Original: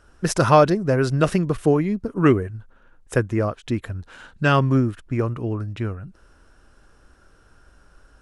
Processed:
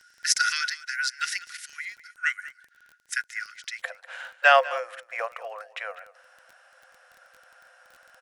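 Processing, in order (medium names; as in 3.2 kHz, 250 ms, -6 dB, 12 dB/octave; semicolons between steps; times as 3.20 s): rippled Chebyshev high-pass 1.4 kHz, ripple 9 dB, from 3.81 s 500 Hz; delay 197 ms -17.5 dB; crackle 18 per s -47 dBFS; trim +8.5 dB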